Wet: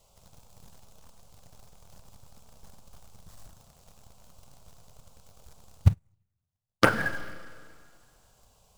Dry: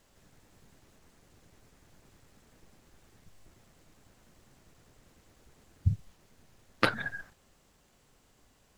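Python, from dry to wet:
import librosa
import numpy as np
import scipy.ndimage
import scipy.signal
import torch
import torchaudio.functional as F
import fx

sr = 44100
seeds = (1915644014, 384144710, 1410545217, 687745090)

p1 = fx.env_phaser(x, sr, low_hz=280.0, high_hz=4100.0, full_db=-31.0)
p2 = fx.quant_companded(p1, sr, bits=4)
p3 = p1 + F.gain(torch.from_numpy(p2), -8.0).numpy()
p4 = fx.rev_schroeder(p3, sr, rt60_s=2.0, comb_ms=33, drr_db=12.5)
p5 = fx.upward_expand(p4, sr, threshold_db=-45.0, expansion=2.5, at=(5.88, 6.86))
y = F.gain(torch.from_numpy(p5), 5.0).numpy()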